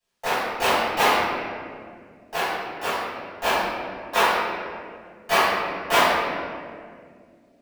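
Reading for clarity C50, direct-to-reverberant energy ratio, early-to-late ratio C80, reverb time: -4.0 dB, -18.0 dB, -0.5 dB, 2.1 s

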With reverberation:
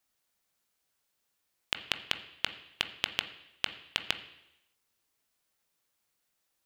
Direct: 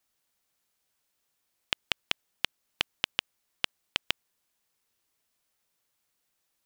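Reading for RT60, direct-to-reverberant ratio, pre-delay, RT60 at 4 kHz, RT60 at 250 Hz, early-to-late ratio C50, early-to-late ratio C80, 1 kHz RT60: 0.85 s, 8.0 dB, 19 ms, 0.90 s, 0.85 s, 12.5 dB, 15.0 dB, 0.85 s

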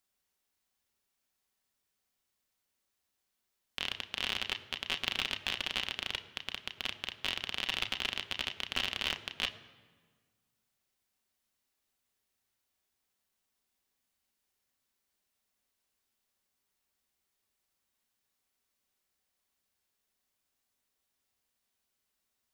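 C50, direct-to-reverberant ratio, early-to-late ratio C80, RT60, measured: 13.5 dB, 6.0 dB, 14.5 dB, 1.6 s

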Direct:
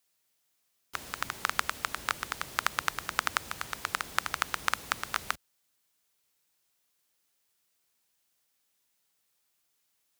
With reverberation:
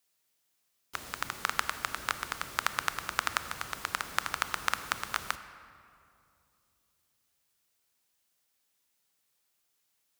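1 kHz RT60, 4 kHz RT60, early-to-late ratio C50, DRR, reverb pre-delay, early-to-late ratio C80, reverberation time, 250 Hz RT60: 2.4 s, 1.5 s, 12.0 dB, 11.0 dB, 23 ms, 12.5 dB, 2.6 s, 3.3 s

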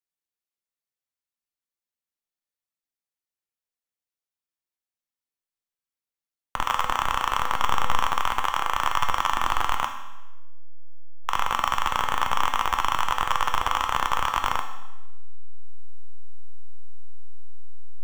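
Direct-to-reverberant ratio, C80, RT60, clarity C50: 4.0 dB, 10.0 dB, 1.0 s, 7.5 dB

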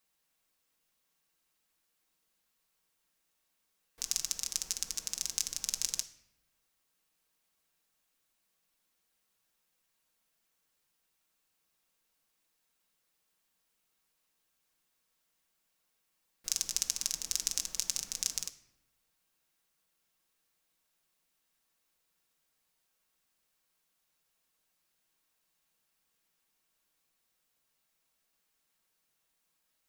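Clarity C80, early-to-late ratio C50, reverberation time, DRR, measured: 17.0 dB, 14.5 dB, 0.85 s, 5.0 dB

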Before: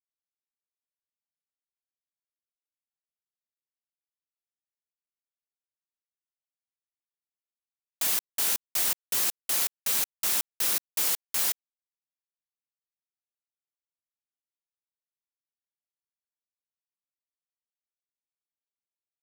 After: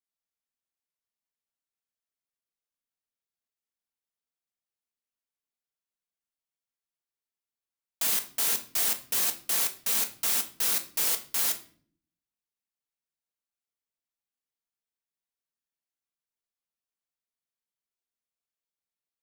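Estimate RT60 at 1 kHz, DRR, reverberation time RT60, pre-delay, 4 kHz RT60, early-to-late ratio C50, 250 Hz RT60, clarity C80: 0.45 s, 5.0 dB, 0.50 s, 4 ms, 0.40 s, 13.5 dB, 0.95 s, 18.0 dB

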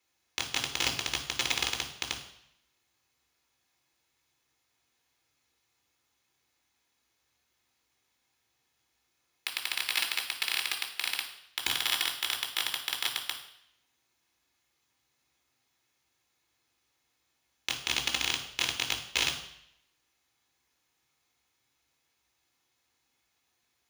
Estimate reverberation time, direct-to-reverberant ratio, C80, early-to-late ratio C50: 0.70 s, 0.5 dB, 12.0 dB, 9.0 dB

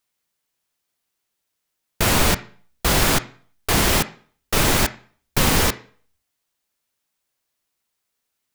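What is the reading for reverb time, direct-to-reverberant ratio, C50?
0.50 s, 11.5 dB, 16.0 dB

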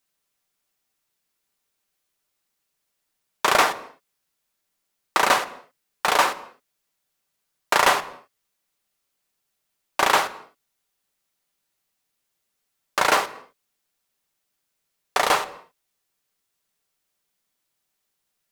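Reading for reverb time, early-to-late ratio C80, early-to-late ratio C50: no single decay rate, 18.5 dB, 17.0 dB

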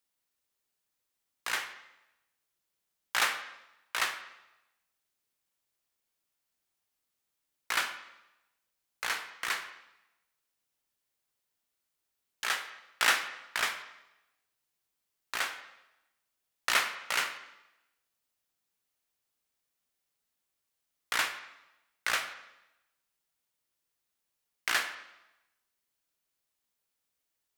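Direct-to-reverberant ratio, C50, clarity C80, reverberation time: 8.0 dB, 10.5 dB, 12.0 dB, 0.95 s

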